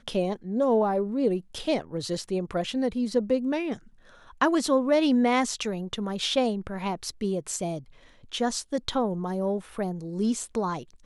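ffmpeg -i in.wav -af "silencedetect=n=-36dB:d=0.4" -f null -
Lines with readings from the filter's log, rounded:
silence_start: 3.76
silence_end: 4.41 | silence_duration: 0.65
silence_start: 7.79
silence_end: 8.32 | silence_duration: 0.53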